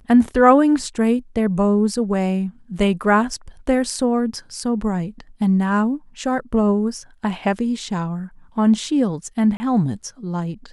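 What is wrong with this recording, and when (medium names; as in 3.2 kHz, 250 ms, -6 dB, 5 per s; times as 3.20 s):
9.57–9.60 s: dropout 30 ms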